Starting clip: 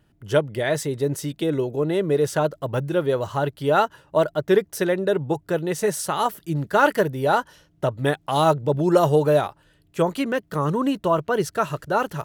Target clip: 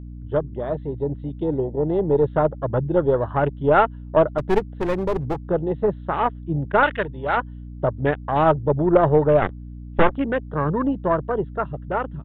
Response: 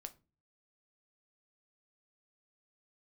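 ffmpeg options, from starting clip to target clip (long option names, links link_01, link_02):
-filter_complex "[0:a]dynaudnorm=framelen=310:gausssize=11:maxgain=14dB,asplit=3[link_01][link_02][link_03];[link_01]afade=type=out:start_time=9.41:duration=0.02[link_04];[link_02]aeval=exprs='0.562*(cos(1*acos(clip(val(0)/0.562,-1,1)))-cos(1*PI/2))+0.1*(cos(3*acos(clip(val(0)/0.562,-1,1)))-cos(3*PI/2))+0.126*(cos(5*acos(clip(val(0)/0.562,-1,1)))-cos(5*PI/2))+0.224*(cos(6*acos(clip(val(0)/0.562,-1,1)))-cos(6*PI/2))+0.1*(cos(7*acos(clip(val(0)/0.562,-1,1)))-cos(7*PI/2))':channel_layout=same,afade=type=in:start_time=9.41:duration=0.02,afade=type=out:start_time=10.16:duration=0.02[link_05];[link_03]afade=type=in:start_time=10.16:duration=0.02[link_06];[link_04][link_05][link_06]amix=inputs=3:normalize=0,equalizer=frequency=2400:width=4:gain=-7,afwtdn=0.0562,aeval=exprs='0.944*(cos(1*acos(clip(val(0)/0.944,-1,1)))-cos(1*PI/2))+0.0211*(cos(3*acos(clip(val(0)/0.944,-1,1)))-cos(3*PI/2))+0.0473*(cos(6*acos(clip(val(0)/0.944,-1,1)))-cos(6*PI/2))+0.0119*(cos(8*acos(clip(val(0)/0.944,-1,1)))-cos(8*PI/2))':channel_layout=same,aresample=8000,aresample=44100,asettb=1/sr,asplit=3[link_07][link_08][link_09];[link_07]atrim=end=4.384[link_10];[link_08]atrim=start=4.38:end=5.39,asetpts=PTS-STARTPTS,afade=type=in:duration=0.004:curve=qsin,afade=type=out:start_time=1.006:duration=0.004:curve=qsin,aeval=exprs='clip(val(0),-1,0.0631)':channel_layout=same[link_11];[link_09]atrim=start=5.386[link_12];[link_10][link_11]acrossfade=duration=0.004:curve1=hsin:curve2=qsin[link_13];[link_13][link_12]acrossfade=duration=0.004:curve1=qsin:curve2=hsin,asettb=1/sr,asplit=3[link_14][link_15][link_16];[link_14]atrim=end=6.834[link_17];[link_15]atrim=start=6.83:end=7.37,asetpts=PTS-STARTPTS,afade=type=in:duration=0.004:curve=qsin,afade=type=out:start_time=0.536:duration=0.004:curve=qsin,tiltshelf=frequency=1400:gain=-9.5[link_18];[link_16]atrim=start=7.366[link_19];[link_17][link_18]acrossfade=duration=0.004:curve1=hsin:curve2=qsin[link_20];[link_20][link_19]acrossfade=duration=0.004:curve1=qsin:curve2=hsin,aeval=exprs='val(0)+0.0251*(sin(2*PI*60*n/s)+sin(2*PI*2*60*n/s)/2+sin(2*PI*3*60*n/s)/3+sin(2*PI*4*60*n/s)/4+sin(2*PI*5*60*n/s)/5)':channel_layout=same,volume=-2.5dB"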